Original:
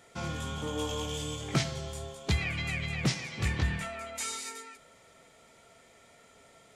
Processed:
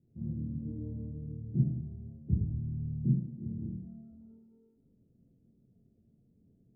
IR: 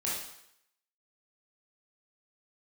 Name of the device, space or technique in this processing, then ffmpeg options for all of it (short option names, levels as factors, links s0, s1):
next room: -filter_complex "[0:a]asettb=1/sr,asplit=3[s0][s1][s2];[s0]atrim=end=3.144[s3];[s1]atrim=start=3.14:end=4.11,asetpts=PTS-STARTPTS,afade=t=in:d=0.004:c=qsin,afade=t=out:st=0.966:d=0.004:c=qsin,highpass=190[s4];[s2]atrim=start=4.106[s5];[s3][s4]acrossfade=d=0.004:c1=hsin:c2=qsin[s6];[s6][s5]acrossfade=d=0.004:c1=qsin:c2=hsin,lowpass=f=260:w=0.5412,lowpass=f=260:w=1.3066[s7];[1:a]atrim=start_sample=2205[s8];[s7][s8]afir=irnorm=-1:irlink=0,volume=0.794"